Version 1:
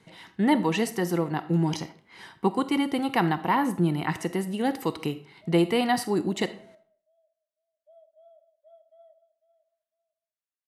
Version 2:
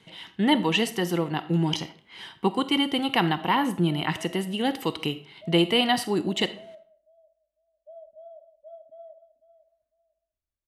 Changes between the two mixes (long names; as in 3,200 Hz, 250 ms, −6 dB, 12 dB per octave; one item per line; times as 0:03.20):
speech: add parametric band 3,100 Hz +11.5 dB 0.55 octaves
background: remove high-pass filter 1,100 Hz 12 dB per octave